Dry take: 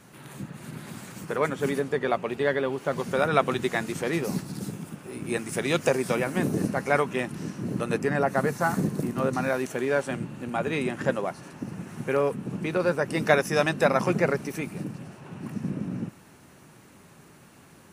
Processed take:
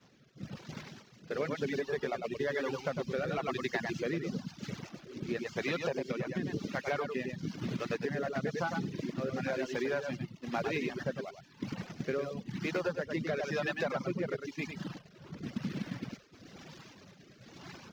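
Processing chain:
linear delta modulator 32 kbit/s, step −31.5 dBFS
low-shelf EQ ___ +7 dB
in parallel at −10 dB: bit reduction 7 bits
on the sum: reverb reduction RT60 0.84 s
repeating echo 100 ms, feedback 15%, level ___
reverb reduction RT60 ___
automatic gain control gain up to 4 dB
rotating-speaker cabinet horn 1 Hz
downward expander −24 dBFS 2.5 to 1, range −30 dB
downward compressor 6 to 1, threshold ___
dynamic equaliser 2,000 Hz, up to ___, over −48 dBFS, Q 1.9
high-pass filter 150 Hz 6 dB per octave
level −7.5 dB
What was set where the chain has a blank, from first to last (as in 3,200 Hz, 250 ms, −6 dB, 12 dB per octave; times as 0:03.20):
190 Hz, −3.5 dB, 0.74 s, −22 dBFS, +3 dB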